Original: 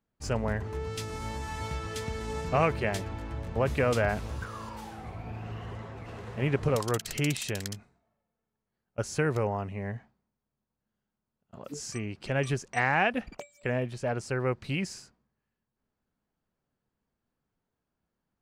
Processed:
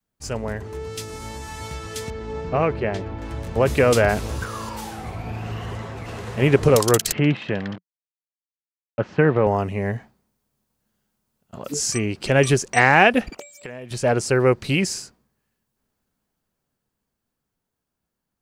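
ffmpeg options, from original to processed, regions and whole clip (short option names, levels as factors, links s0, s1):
-filter_complex "[0:a]asettb=1/sr,asplit=3[s0][s1][s2];[s0]atrim=end=2.104[s3];[s1]atrim=start=2.1:end=3.22,asetpts=PTS-STARTPTS,afade=t=in:d=0.004:c=qsin,afade=t=out:st=1.116:d=0.004:c=qsin,lowpass=4300,highshelf=f=2200:g=-9[s4];[s2]atrim=start=3.216[s5];[s3][s4]acrossfade=d=0.004:c1=hsin:c2=qsin[s6];[s6][s5]acrossfade=d=0.004:c1=qsin:c2=hsin,asettb=1/sr,asplit=3[s7][s8][s9];[s7]atrim=end=7.124[s10];[s8]atrim=start=7.12:end=9.47,asetpts=PTS-STARTPTS,afade=t=in:d=0.004:c=qsin,afade=t=out:st=2.346:d=0.004:c=qsin,bandreject=f=1400:w=15,aeval=exprs='val(0)*gte(abs(val(0)),0.00891)':c=same,highpass=120,equalizer=f=180:t=q:w=4:g=5,equalizer=f=400:t=q:w=4:g=-5,equalizer=f=2300:t=q:w=4:g=-5,lowpass=f=2500:w=0.5412,lowpass=f=2500:w=1.3066[s11];[s9]atrim=start=9.466[s12];[s10][s11]acrossfade=d=0.004:c1=hsin:c2=qsin[s13];[s13][s12]acrossfade=d=0.004:c1=qsin:c2=hsin,asettb=1/sr,asplit=3[s14][s15][s16];[s14]atrim=end=13.304[s17];[s15]atrim=start=13.3:end=13.91,asetpts=PTS-STARTPTS,afade=t=in:d=0.004:c=qsin,afade=t=out:st=0.606:d=0.004:c=qsin,highpass=58,lowshelf=f=170:g=-7.5,acompressor=threshold=0.00631:ratio=5:attack=3.2:release=140:knee=1:detection=peak[s18];[s16]atrim=start=13.906[s19];[s17][s18]acrossfade=d=0.004:c1=hsin:c2=qsin[s20];[s20][s19]acrossfade=d=0.004:c1=qsin:c2=hsin,adynamicequalizer=threshold=0.00891:dfrequency=390:dqfactor=1.2:tfrequency=390:tqfactor=1.2:attack=5:release=100:ratio=0.375:range=2.5:mode=boostabove:tftype=bell,dynaudnorm=f=520:g=13:m=3.98,highshelf=f=4100:g=9"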